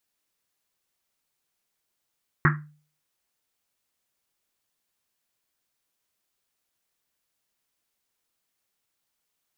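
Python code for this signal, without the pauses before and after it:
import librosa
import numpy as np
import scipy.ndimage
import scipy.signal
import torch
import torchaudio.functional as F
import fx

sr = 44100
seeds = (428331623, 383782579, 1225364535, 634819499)

y = fx.risset_drum(sr, seeds[0], length_s=1.1, hz=150.0, decay_s=0.44, noise_hz=1500.0, noise_width_hz=810.0, noise_pct=40)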